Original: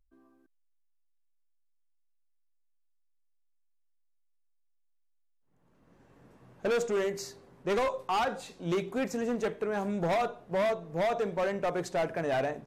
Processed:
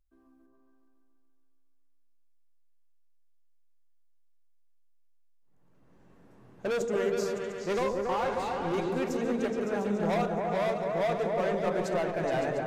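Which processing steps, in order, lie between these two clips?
8.06–8.74 overdrive pedal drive 25 dB, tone 1200 Hz, clips at -25 dBFS; on a send: repeats that get brighter 0.14 s, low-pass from 400 Hz, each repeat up 2 oct, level 0 dB; on the sum: gain -2 dB

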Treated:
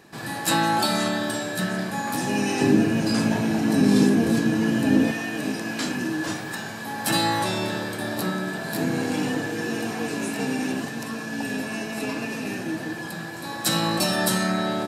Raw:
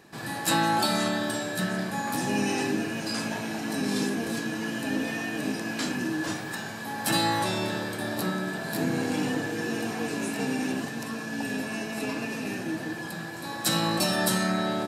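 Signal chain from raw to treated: 2.61–5.12 low shelf 470 Hz +11 dB; gain +2.5 dB

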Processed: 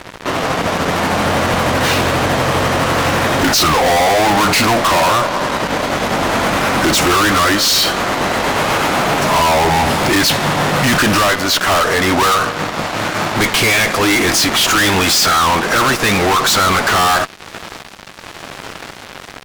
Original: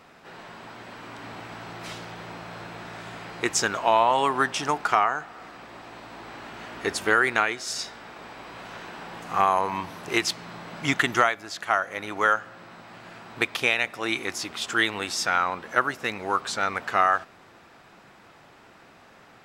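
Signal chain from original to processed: gliding pitch shift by -5.5 st ending unshifted; fuzz box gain 44 dB, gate -50 dBFS; gain +2 dB

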